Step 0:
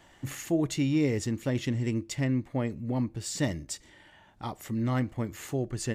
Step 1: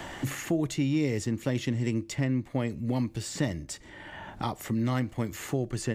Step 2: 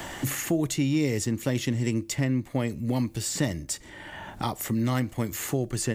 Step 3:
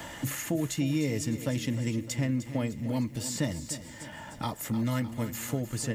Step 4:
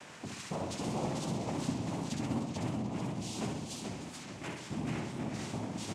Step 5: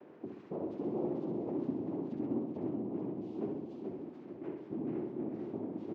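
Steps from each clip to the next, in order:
three-band squash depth 70%
high shelf 7400 Hz +12 dB; gain +2 dB
notch comb 380 Hz; lo-fi delay 0.304 s, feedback 55%, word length 9-bit, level -12 dB; gain -3 dB
noise vocoder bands 4; feedback echo 65 ms, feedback 57%, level -4.5 dB; warbling echo 0.437 s, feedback 45%, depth 175 cents, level -4 dB; gain -9 dB
band-pass 360 Hz, Q 3.2; air absorption 150 m; gain +7.5 dB

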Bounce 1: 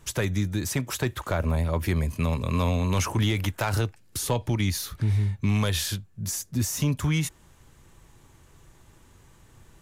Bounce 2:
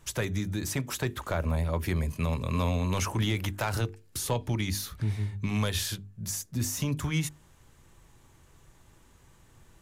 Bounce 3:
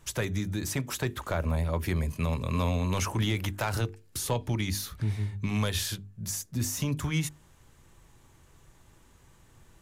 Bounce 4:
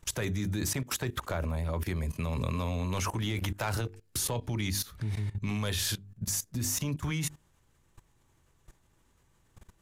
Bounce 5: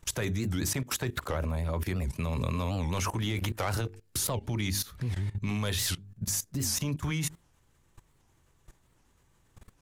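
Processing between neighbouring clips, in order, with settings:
notches 50/100/150/200/250/300/350/400/450 Hz; gain -3 dB
nothing audible
level quantiser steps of 18 dB; gain +5 dB
record warp 78 rpm, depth 250 cents; gain +1 dB

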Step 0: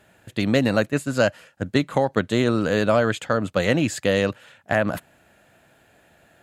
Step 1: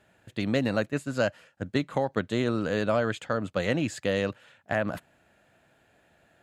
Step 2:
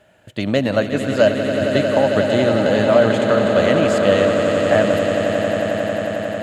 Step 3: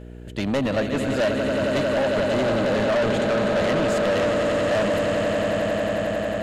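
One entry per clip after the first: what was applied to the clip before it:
high shelf 11000 Hz -10.5 dB; gain -6.5 dB
small resonant body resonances 610/3000 Hz, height 10 dB, ringing for 40 ms; on a send: swelling echo 90 ms, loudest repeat 8, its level -10 dB; on the sum: gain +6.5 dB
buzz 60 Hz, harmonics 8, -39 dBFS -4 dB/oct; soft clip -18 dBFS, distortion -8 dB

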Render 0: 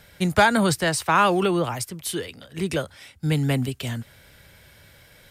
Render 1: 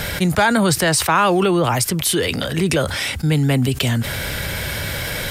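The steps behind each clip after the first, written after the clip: fast leveller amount 70%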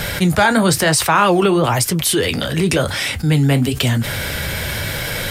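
flange 1 Hz, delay 5.3 ms, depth 9.8 ms, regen -56%; gain +6 dB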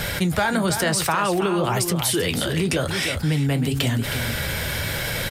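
echo 0.316 s -9.5 dB; compressor, threshold -14 dBFS, peak gain reduction 5.5 dB; gain -3.5 dB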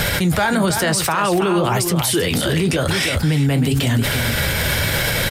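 limiter -18 dBFS, peak gain reduction 10 dB; gain +8.5 dB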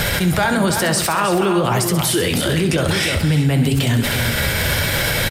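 feedback echo 66 ms, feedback 56%, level -10.5 dB

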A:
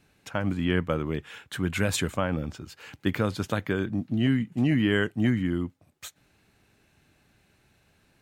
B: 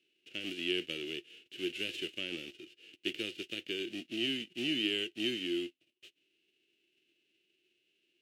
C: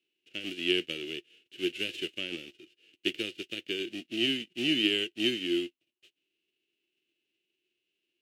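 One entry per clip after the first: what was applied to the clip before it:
spectral whitening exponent 0.3; double band-pass 1000 Hz, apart 3 oct; notch 770 Hz, Q 12
upward expander 1.5:1, over -56 dBFS; gain +7 dB

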